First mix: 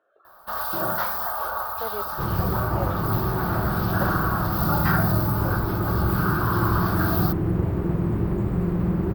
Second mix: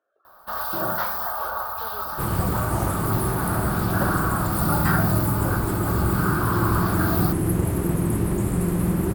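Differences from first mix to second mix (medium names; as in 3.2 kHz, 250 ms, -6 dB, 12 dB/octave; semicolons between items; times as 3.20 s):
speech -8.5 dB; second sound: remove tape spacing loss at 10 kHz 29 dB; master: add peaking EQ 260 Hz +6 dB 0.21 oct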